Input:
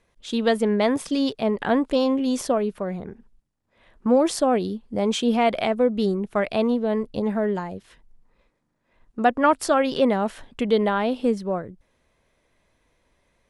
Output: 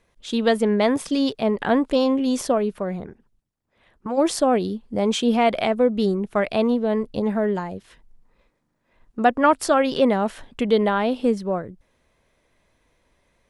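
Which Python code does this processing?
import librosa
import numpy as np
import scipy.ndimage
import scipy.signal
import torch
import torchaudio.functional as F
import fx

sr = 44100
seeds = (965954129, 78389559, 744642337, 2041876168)

y = fx.hpss(x, sr, part='harmonic', gain_db=-12, at=(3.05, 4.17), fade=0.02)
y = y * 10.0 ** (1.5 / 20.0)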